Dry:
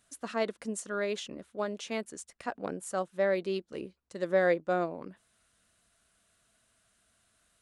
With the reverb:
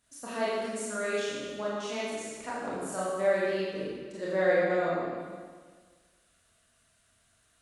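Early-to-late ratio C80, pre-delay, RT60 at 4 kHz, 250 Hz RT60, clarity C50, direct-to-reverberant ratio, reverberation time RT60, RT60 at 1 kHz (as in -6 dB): -0.5 dB, 25 ms, 1.5 s, 1.6 s, -2.5 dB, -8.5 dB, 1.6 s, 1.6 s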